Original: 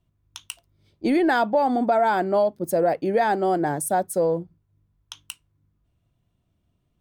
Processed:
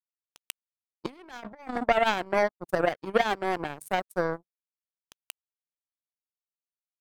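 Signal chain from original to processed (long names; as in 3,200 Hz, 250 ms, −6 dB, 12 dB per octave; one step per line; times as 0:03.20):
0:01.06–0:01.74: compressor whose output falls as the input rises −26 dBFS, ratio −1
power curve on the samples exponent 3
level +4 dB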